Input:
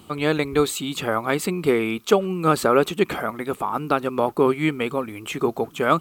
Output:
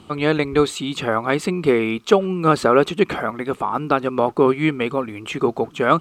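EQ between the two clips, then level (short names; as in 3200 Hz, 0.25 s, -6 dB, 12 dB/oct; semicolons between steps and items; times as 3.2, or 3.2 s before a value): air absorption 65 m; +3.0 dB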